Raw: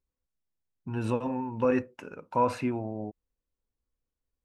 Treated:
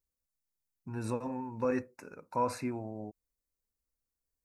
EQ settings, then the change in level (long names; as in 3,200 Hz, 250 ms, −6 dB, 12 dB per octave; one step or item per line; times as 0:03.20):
Butterworth band-reject 3,100 Hz, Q 2.2
high-shelf EQ 4,500 Hz +12 dB
−6.0 dB